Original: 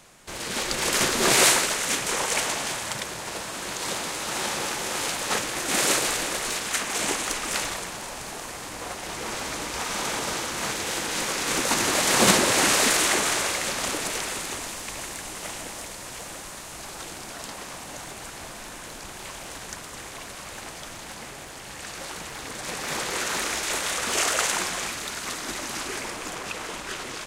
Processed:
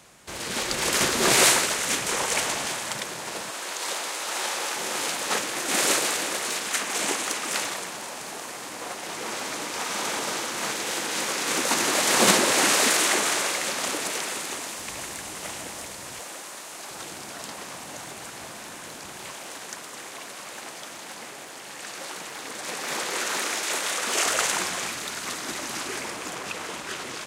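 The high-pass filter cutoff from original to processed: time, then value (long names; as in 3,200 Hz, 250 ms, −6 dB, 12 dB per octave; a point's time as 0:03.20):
44 Hz
from 0:02.68 140 Hz
from 0:03.51 430 Hz
from 0:04.76 190 Hz
from 0:14.78 71 Hz
from 0:16.20 290 Hz
from 0:16.91 110 Hz
from 0:19.33 230 Hz
from 0:24.26 100 Hz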